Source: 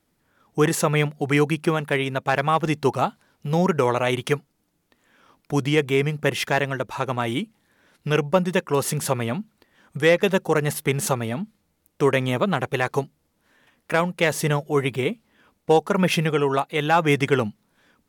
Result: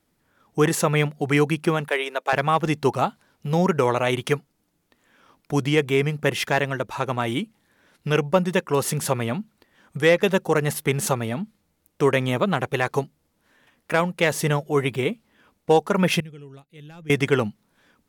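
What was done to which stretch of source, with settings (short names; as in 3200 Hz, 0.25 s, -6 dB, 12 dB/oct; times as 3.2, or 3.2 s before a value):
1.88–2.33 HPF 380 Hz 24 dB/oct
16.2–17.1 passive tone stack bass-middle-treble 10-0-1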